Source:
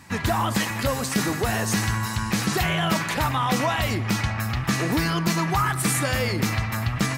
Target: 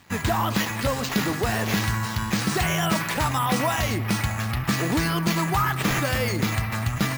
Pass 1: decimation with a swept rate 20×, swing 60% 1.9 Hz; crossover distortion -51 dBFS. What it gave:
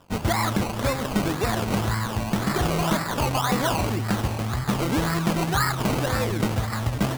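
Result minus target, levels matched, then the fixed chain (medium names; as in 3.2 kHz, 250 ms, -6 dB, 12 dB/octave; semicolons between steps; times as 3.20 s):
decimation with a swept rate: distortion +9 dB
decimation with a swept rate 4×, swing 60% 1.9 Hz; crossover distortion -51 dBFS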